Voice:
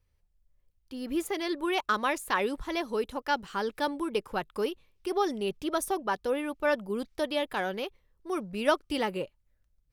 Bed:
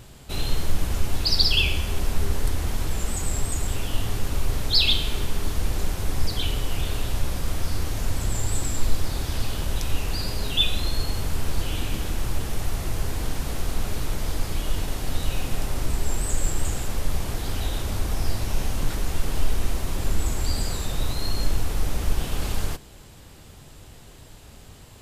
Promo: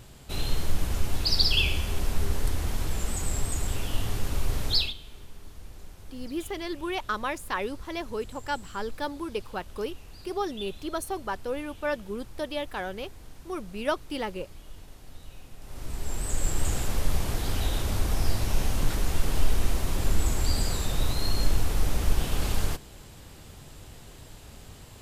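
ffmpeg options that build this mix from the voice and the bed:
ffmpeg -i stem1.wav -i stem2.wav -filter_complex "[0:a]adelay=5200,volume=-2.5dB[link_01];[1:a]volume=16.5dB,afade=type=out:start_time=4.72:duration=0.21:silence=0.141254,afade=type=in:start_time=15.6:duration=1.17:silence=0.105925[link_02];[link_01][link_02]amix=inputs=2:normalize=0" out.wav

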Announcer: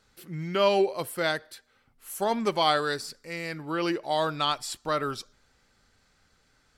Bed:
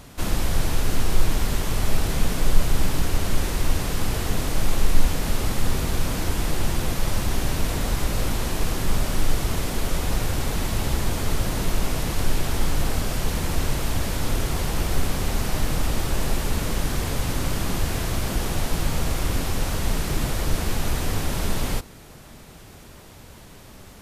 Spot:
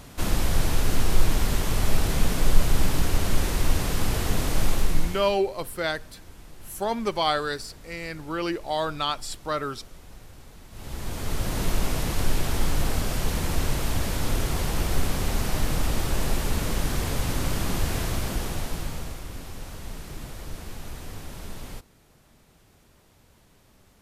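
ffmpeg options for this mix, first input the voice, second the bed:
ffmpeg -i stem1.wav -i stem2.wav -filter_complex "[0:a]adelay=4600,volume=-0.5dB[link_01];[1:a]volume=20.5dB,afade=type=out:start_time=4.64:duration=0.72:silence=0.0794328,afade=type=in:start_time=10.7:duration=0.95:silence=0.0891251,afade=type=out:start_time=18:duration=1.23:silence=0.251189[link_02];[link_01][link_02]amix=inputs=2:normalize=0" out.wav

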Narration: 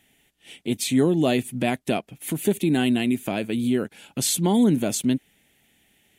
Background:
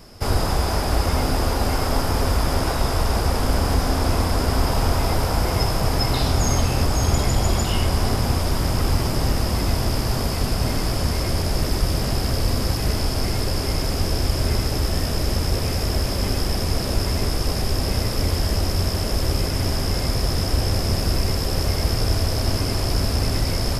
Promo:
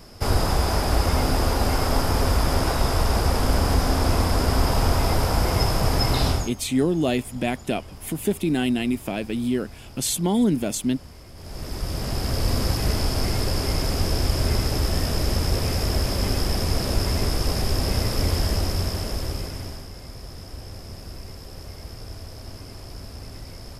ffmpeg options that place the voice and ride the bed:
ffmpeg -i stem1.wav -i stem2.wav -filter_complex "[0:a]adelay=5800,volume=-1.5dB[link_01];[1:a]volume=20.5dB,afade=type=out:start_time=6.28:duration=0.23:silence=0.0841395,afade=type=in:start_time=11.35:duration=1.21:silence=0.0891251,afade=type=out:start_time=18.4:duration=1.49:silence=0.158489[link_02];[link_01][link_02]amix=inputs=2:normalize=0" out.wav

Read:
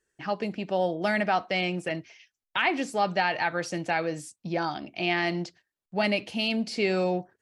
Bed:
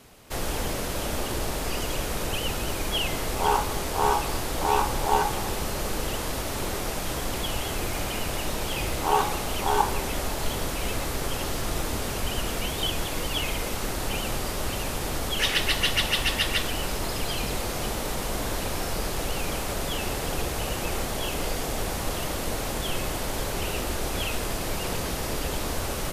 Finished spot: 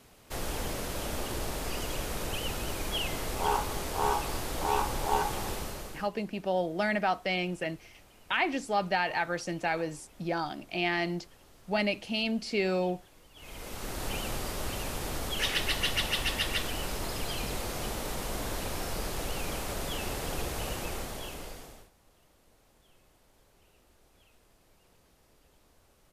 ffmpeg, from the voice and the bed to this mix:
ffmpeg -i stem1.wav -i stem2.wav -filter_complex "[0:a]adelay=5750,volume=-3dB[link_01];[1:a]volume=17.5dB,afade=type=out:start_time=5.5:duration=0.59:silence=0.0707946,afade=type=in:start_time=13.35:duration=0.72:silence=0.0707946,afade=type=out:start_time=20.68:duration=1.22:silence=0.0334965[link_02];[link_01][link_02]amix=inputs=2:normalize=0" out.wav

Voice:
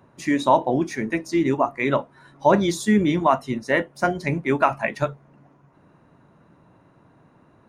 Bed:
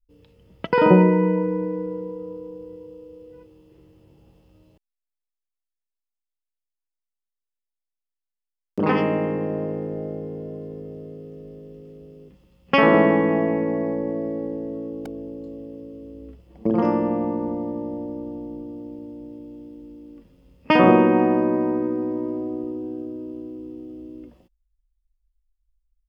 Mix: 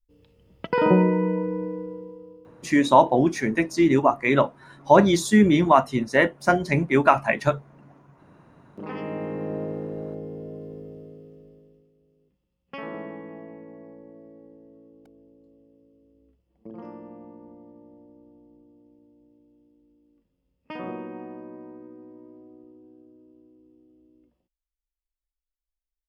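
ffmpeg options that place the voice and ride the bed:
ffmpeg -i stem1.wav -i stem2.wav -filter_complex "[0:a]adelay=2450,volume=2dB[link_01];[1:a]volume=8dB,afade=type=out:start_time=1.66:duration=0.84:silence=0.266073,afade=type=in:start_time=8.9:duration=0.67:silence=0.251189,afade=type=out:start_time=10.77:duration=1.14:silence=0.141254[link_02];[link_01][link_02]amix=inputs=2:normalize=0" out.wav

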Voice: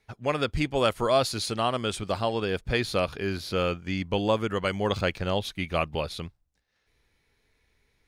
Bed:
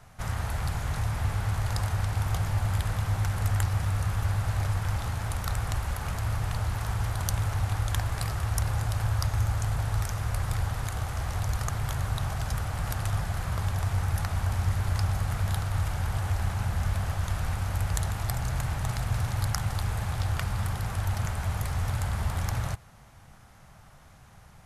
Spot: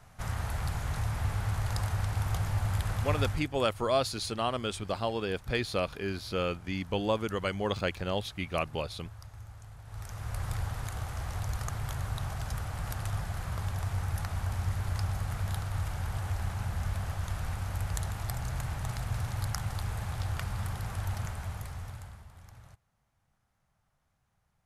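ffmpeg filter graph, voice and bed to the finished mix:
ffmpeg -i stem1.wav -i stem2.wav -filter_complex "[0:a]adelay=2800,volume=-4.5dB[link_01];[1:a]volume=12.5dB,afade=type=out:start_time=3.23:duration=0.24:silence=0.133352,afade=type=in:start_time=9.84:duration=0.61:silence=0.16788,afade=type=out:start_time=21.11:duration=1.14:silence=0.125893[link_02];[link_01][link_02]amix=inputs=2:normalize=0" out.wav

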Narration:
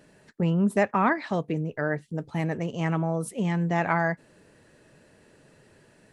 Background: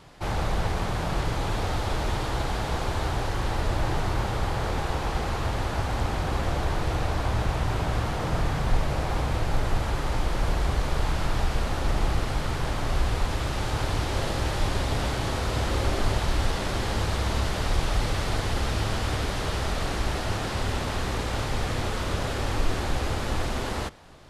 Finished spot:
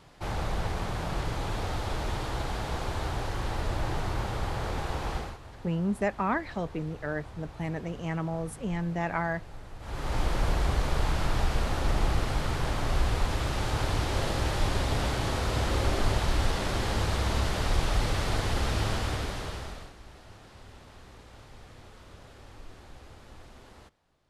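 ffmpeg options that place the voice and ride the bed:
ffmpeg -i stem1.wav -i stem2.wav -filter_complex "[0:a]adelay=5250,volume=-5.5dB[link_01];[1:a]volume=13.5dB,afade=type=out:start_time=5.14:duration=0.24:silence=0.177828,afade=type=in:start_time=9.79:duration=0.42:silence=0.125893,afade=type=out:start_time=18.88:duration=1.05:silence=0.0944061[link_02];[link_01][link_02]amix=inputs=2:normalize=0" out.wav

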